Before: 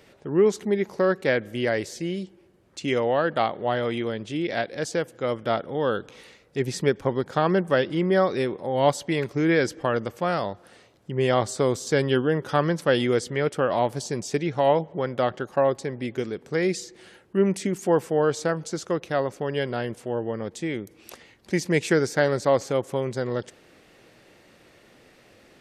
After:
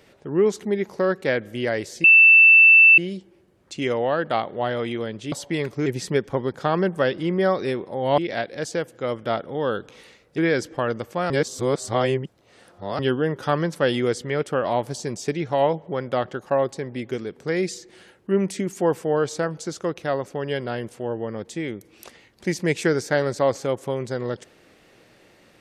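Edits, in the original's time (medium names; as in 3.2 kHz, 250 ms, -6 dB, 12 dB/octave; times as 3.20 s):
2.04 s: add tone 2.66 kHz -8 dBFS 0.94 s
4.38–6.58 s: swap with 8.90–9.44 s
10.36–12.05 s: reverse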